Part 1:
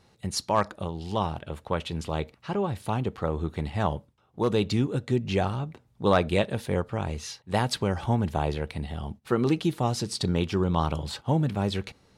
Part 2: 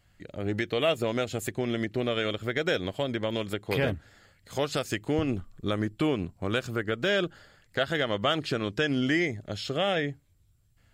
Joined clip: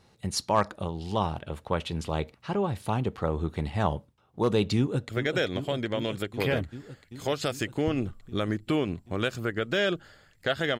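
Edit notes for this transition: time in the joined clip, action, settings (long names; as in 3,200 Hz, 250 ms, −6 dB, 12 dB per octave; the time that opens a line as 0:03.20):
part 1
0:04.77–0:05.09: delay throw 390 ms, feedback 80%, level −8.5 dB
0:05.09: continue with part 2 from 0:02.40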